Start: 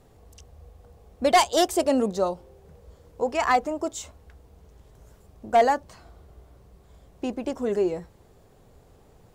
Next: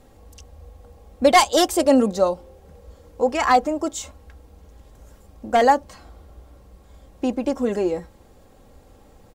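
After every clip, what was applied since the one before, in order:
comb filter 3.7 ms, depth 47%
level +4 dB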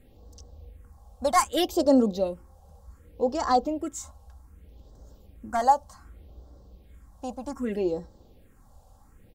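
all-pass phaser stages 4, 0.65 Hz, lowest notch 340–2,400 Hz
level −4 dB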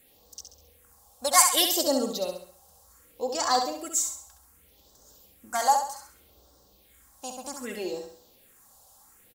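spectral tilt +4.5 dB per octave
on a send: repeating echo 67 ms, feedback 41%, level −6 dB
on the sum: level −1 dB

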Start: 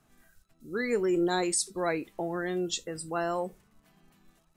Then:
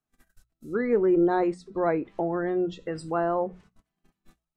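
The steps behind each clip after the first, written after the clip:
treble cut that deepens with the level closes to 1,200 Hz, closed at −28.5 dBFS
noise gate −57 dBFS, range −27 dB
mains-hum notches 60/120/180 Hz
level +5.5 dB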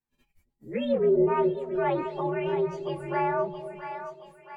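partials spread apart or drawn together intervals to 123%
echo with a time of its own for lows and highs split 640 Hz, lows 268 ms, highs 673 ms, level −9 dB
treble cut that deepens with the level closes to 1,700 Hz, closed at −19.5 dBFS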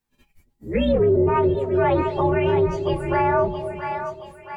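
sub-octave generator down 2 octaves, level −3 dB
brickwall limiter −20 dBFS, peak gain reduction 7.5 dB
level +9 dB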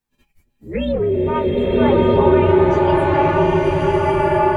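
slow-attack reverb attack 1,200 ms, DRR −5.5 dB
level −1 dB

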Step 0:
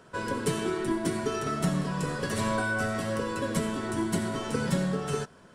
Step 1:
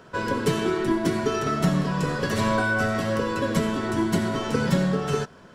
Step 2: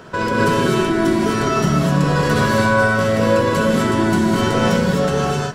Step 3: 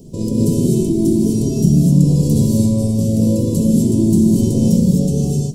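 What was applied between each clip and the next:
parametric band 9,100 Hz −11 dB 0.48 octaves; level +5.5 dB
in parallel at −0.5 dB: compressor whose output falls as the input rises −29 dBFS, ratio −0.5; on the sum: reverb whose tail is shaped and stops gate 280 ms rising, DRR −2.5 dB
background noise brown −52 dBFS; Chebyshev band-stop filter 250–8,100 Hz, order 2; level +6 dB

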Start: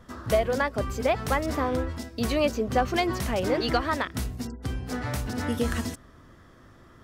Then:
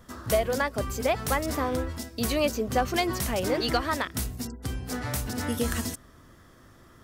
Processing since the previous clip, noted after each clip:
high-shelf EQ 6,400 Hz +12 dB
level −1.5 dB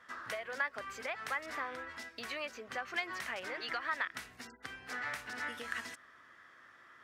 downward compressor 5 to 1, threshold −30 dBFS, peak gain reduction 10.5 dB
resonant band-pass 1,800 Hz, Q 1.9
level +4.5 dB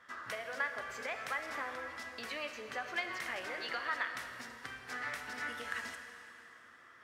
dense smooth reverb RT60 3 s, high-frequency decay 0.9×, DRR 5 dB
level −1 dB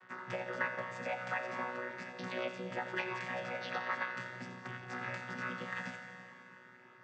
channel vocoder with a chord as carrier bare fifth, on B2
echo with a time of its own for lows and highs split 820 Hz, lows 325 ms, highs 88 ms, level −13 dB
level +1.5 dB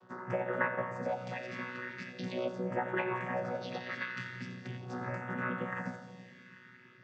all-pass phaser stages 2, 0.41 Hz, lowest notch 660–4,600 Hz
high-frequency loss of the air 110 metres
level +6.5 dB

